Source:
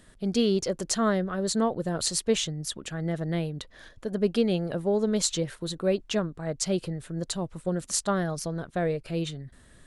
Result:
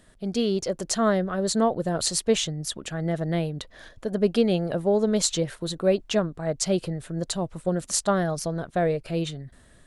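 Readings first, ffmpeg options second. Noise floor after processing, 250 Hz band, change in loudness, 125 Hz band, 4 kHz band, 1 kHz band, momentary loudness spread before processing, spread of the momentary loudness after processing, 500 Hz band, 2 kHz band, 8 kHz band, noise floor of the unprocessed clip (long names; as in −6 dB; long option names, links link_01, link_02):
−55 dBFS, +2.0 dB, +2.5 dB, +2.0 dB, +2.0 dB, +4.0 dB, 9 LU, 9 LU, +3.5 dB, +2.0 dB, +2.0 dB, −55 dBFS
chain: -af "equalizer=frequency=670:width_type=o:width=0.58:gain=4,dynaudnorm=framelen=350:gausssize=5:maxgain=4dB,volume=-1.5dB"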